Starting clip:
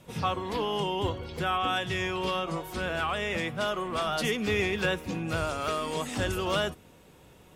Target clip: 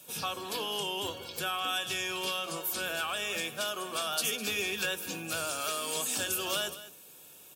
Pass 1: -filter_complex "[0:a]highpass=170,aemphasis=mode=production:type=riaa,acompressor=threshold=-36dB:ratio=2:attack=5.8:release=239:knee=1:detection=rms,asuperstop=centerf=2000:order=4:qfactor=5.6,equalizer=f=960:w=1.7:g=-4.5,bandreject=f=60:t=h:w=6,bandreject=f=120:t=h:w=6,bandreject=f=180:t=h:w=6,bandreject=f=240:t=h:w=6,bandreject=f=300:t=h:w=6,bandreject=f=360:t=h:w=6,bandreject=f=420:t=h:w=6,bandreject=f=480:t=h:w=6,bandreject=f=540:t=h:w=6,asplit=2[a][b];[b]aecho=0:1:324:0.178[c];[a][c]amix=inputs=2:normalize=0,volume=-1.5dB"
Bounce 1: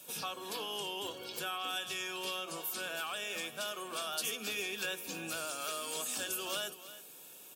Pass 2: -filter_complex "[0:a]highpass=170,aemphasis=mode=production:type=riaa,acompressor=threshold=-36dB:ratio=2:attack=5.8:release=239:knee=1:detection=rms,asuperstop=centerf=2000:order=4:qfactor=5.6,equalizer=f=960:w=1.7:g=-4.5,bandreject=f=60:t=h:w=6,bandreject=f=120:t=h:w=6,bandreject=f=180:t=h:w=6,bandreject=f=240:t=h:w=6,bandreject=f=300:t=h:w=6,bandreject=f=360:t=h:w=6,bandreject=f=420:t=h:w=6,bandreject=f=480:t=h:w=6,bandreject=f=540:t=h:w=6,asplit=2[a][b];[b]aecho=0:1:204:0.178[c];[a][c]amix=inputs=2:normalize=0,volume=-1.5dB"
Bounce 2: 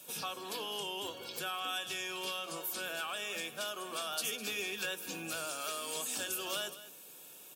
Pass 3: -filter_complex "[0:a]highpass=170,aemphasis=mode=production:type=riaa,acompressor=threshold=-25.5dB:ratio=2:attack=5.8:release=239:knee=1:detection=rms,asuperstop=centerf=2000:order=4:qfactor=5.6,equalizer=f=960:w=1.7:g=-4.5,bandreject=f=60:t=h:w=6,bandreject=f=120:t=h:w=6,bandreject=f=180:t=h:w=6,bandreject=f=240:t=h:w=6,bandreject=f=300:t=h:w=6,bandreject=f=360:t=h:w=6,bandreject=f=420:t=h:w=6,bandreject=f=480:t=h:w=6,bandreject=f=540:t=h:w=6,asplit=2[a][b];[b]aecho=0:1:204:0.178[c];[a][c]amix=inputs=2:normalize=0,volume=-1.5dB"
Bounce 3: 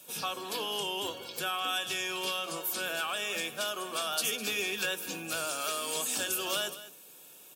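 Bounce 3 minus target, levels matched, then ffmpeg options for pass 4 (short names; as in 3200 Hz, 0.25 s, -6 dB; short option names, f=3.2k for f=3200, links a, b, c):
125 Hz band -4.0 dB
-filter_complex "[0:a]highpass=74,aemphasis=mode=production:type=riaa,acompressor=threshold=-25.5dB:ratio=2:attack=5.8:release=239:knee=1:detection=rms,asuperstop=centerf=2000:order=4:qfactor=5.6,equalizer=f=960:w=1.7:g=-4.5,bandreject=f=60:t=h:w=6,bandreject=f=120:t=h:w=6,bandreject=f=180:t=h:w=6,bandreject=f=240:t=h:w=6,bandreject=f=300:t=h:w=6,bandreject=f=360:t=h:w=6,bandreject=f=420:t=h:w=6,bandreject=f=480:t=h:w=6,bandreject=f=540:t=h:w=6,asplit=2[a][b];[b]aecho=0:1:204:0.178[c];[a][c]amix=inputs=2:normalize=0,volume=-1.5dB"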